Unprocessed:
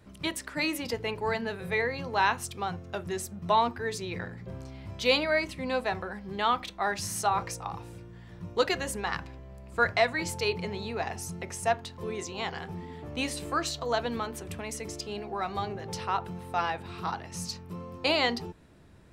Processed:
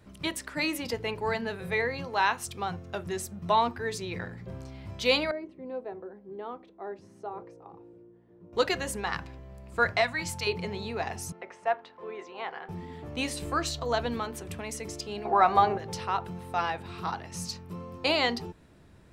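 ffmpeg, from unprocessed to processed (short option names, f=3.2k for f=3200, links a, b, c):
-filter_complex "[0:a]asettb=1/sr,asplit=3[a][b][c];[a]atrim=end=2.054[d];[b]atrim=start=2.05:end=2.47,asetpts=PTS-STARTPTS,afade=t=in:d=0.004:c=qsin,afade=t=out:st=0.416:d=0.004:c=qsin,lowshelf=f=200:g=-9[e];[c]atrim=start=2.466[f];[d][e]acrossfade=d=0.004:c1=hsin:c2=qsin[g];[g][f]acrossfade=d=0.004:c1=qsin:c2=hsin,asettb=1/sr,asplit=3[h][i][j];[h]atrim=end=5.314[k];[i]atrim=start=5.31:end=8.53,asetpts=PTS-STARTPTS,afade=t=in:d=0.004:c=qsin,afade=t=out:st=3.216:d=0.004:c=qsin,bandpass=f=380:t=q:w=2.5[l];[j]atrim=start=8.526[m];[k][l]acrossfade=d=0.004:c1=hsin:c2=qsin[n];[n][m]acrossfade=d=0.004:c1=qsin:c2=hsin,asettb=1/sr,asplit=3[o][p][q];[o]atrim=end=10.014[r];[p]atrim=start=10.01:end=10.47,asetpts=PTS-STARTPTS,afade=t=in:d=0.004:c=qsin,afade=t=out:st=0.456:d=0.004:c=qsin,equalizer=f=420:w=2.4:g=-14.5[s];[q]atrim=start=10.466[t];[r][s]acrossfade=d=0.004:c1=hsin:c2=qsin[u];[u][t]acrossfade=d=0.004:c1=qsin:c2=hsin,asettb=1/sr,asplit=3[v][w][x];[v]atrim=end=11.324[y];[w]atrim=start=11.32:end=12.69,asetpts=PTS-STARTPTS,afade=t=in:d=0.004:c=qsin,afade=t=out:st=1.366:d=0.004:c=qsin,highpass=460,lowpass=2k[z];[x]atrim=start=12.686[aa];[y][z]acrossfade=d=0.004:c1=hsin:c2=qsin[ab];[ab][aa]acrossfade=d=0.004:c1=qsin:c2=hsin,asettb=1/sr,asplit=3[ac][ad][ae];[ac]atrim=end=13.414[af];[ad]atrim=start=13.41:end=14.14,asetpts=PTS-STARTPTS,afade=t=in:d=0.004:c=qsin,afade=t=out:st=0.726:d=0.004:c=qsin,lowshelf=f=99:g=9.5[ag];[ae]atrim=start=14.136[ah];[af][ag]acrossfade=d=0.004:c1=hsin:c2=qsin[ai];[ai][ah]acrossfade=d=0.004:c1=qsin:c2=hsin,asettb=1/sr,asplit=3[aj][ak][al];[aj]atrim=end=15.254[am];[ak]atrim=start=15.25:end=15.78,asetpts=PTS-STARTPTS,afade=t=in:d=0.004:c=qsin,afade=t=out:st=0.526:d=0.004:c=qsin,equalizer=f=910:t=o:w=2.6:g=13[an];[al]atrim=start=15.776[ao];[am][an]acrossfade=d=0.004:c1=hsin:c2=qsin[ap];[ap][ao]acrossfade=d=0.004:c1=qsin:c2=hsin"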